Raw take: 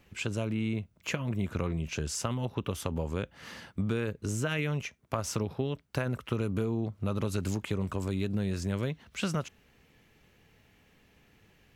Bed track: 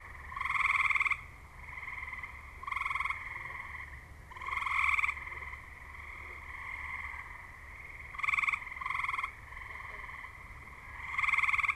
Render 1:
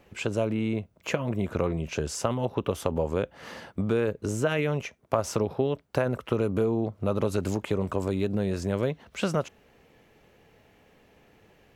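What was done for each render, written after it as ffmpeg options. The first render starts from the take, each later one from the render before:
-af "equalizer=f=580:w=0.67:g=10"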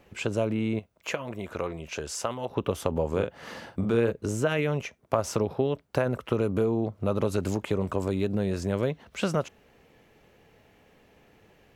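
-filter_complex "[0:a]asettb=1/sr,asplit=3[a][b][c];[a]atrim=end=0.794[d];[b]atrim=start=0.79:end=2.5,asetpts=PTS-STARTPTS,afade=t=in:d=0.004:c=qsin,afade=t=out:st=1.706:d=0.004:c=qsin,equalizer=f=130:w=0.38:g=-10.5[e];[c]atrim=start=2.496[f];[d][e]acrossfade=d=0.004:c1=hsin:c2=qsin[g];[g][f]acrossfade=d=0.004:c1=qsin:c2=hsin,asettb=1/sr,asplit=3[h][i][j];[h]atrim=end=3.094[k];[i]atrim=start=3.09:end=4.12,asetpts=PTS-STARTPTS,afade=t=in:d=0.004:c=qsin,afade=t=out:st=1.026:d=0.004:c=qsin,asplit=2[l][m];[m]adelay=43,volume=-7dB[n];[l][n]amix=inputs=2:normalize=0,atrim=end_sample=45423[o];[j]atrim=start=4.116[p];[k][o]acrossfade=d=0.004:c1=hsin:c2=qsin[q];[q][p]acrossfade=d=0.004:c1=qsin:c2=hsin"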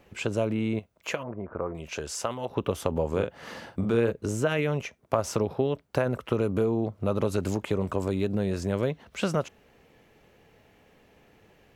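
-filter_complex "[0:a]asettb=1/sr,asplit=3[a][b][c];[a]atrim=end=1.234[d];[b]atrim=start=1.23:end=1.75,asetpts=PTS-STARTPTS,afade=t=in:d=0.004:c=qsin,afade=t=out:st=0.516:d=0.004:c=qsin,lowpass=f=1.4k:w=0.5412,lowpass=f=1.4k:w=1.3066[e];[c]atrim=start=1.746[f];[d][e]acrossfade=d=0.004:c1=hsin:c2=qsin[g];[g][f]acrossfade=d=0.004:c1=qsin:c2=hsin"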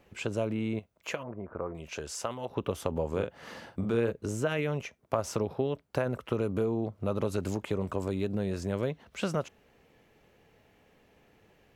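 -af "volume=-4dB"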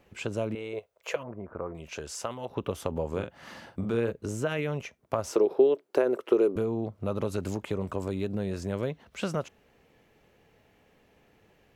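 -filter_complex "[0:a]asettb=1/sr,asplit=3[a][b][c];[a]atrim=end=0.554[d];[b]atrim=start=0.55:end=1.16,asetpts=PTS-STARTPTS,afade=t=in:d=0.004:c=qsin,afade=t=out:st=0.606:d=0.004:c=qsin,lowshelf=f=340:t=q:w=3:g=-10.5[e];[c]atrim=start=1.156[f];[d][e]acrossfade=d=0.004:c1=hsin:c2=qsin[g];[g][f]acrossfade=d=0.004:c1=qsin:c2=hsin,asettb=1/sr,asplit=3[h][i][j];[h]atrim=end=3.194[k];[i]atrim=start=3.19:end=3.67,asetpts=PTS-STARTPTS,afade=t=in:d=0.004:c=qsin,afade=t=out:st=0.476:d=0.004:c=qsin,equalizer=f=460:w=6.8:g=-13[l];[j]atrim=start=3.666[m];[k][l]acrossfade=d=0.004:c1=hsin:c2=qsin[n];[n][m]acrossfade=d=0.004:c1=qsin:c2=hsin,asettb=1/sr,asplit=3[o][p][q];[o]atrim=end=5.314[r];[p]atrim=start=5.31:end=6.56,asetpts=PTS-STARTPTS,afade=t=in:d=0.004:c=qsin,afade=t=out:st=1.246:d=0.004:c=qsin,highpass=f=370:t=q:w=4.4[s];[q]atrim=start=6.556[t];[r][s]acrossfade=d=0.004:c1=hsin:c2=qsin[u];[u][t]acrossfade=d=0.004:c1=qsin:c2=hsin"

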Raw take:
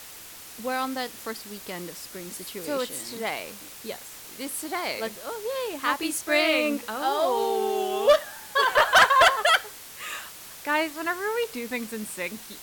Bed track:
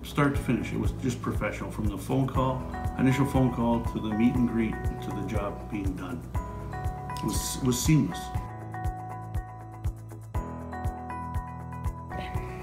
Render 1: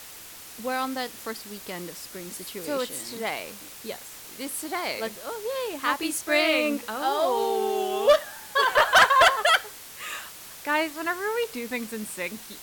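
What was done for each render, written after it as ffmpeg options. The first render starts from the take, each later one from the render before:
-af anull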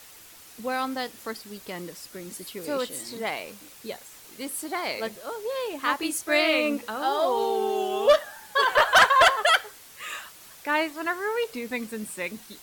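-af "afftdn=nr=6:nf=-44"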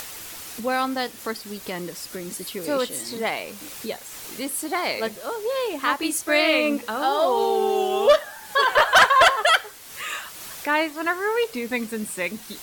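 -filter_complex "[0:a]asplit=2[a][b];[b]alimiter=limit=-18dB:level=0:latency=1:release=395,volume=-2.5dB[c];[a][c]amix=inputs=2:normalize=0,acompressor=mode=upward:threshold=-29dB:ratio=2.5"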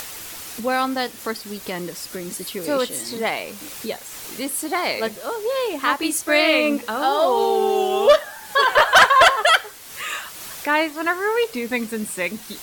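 -af "volume=2.5dB"

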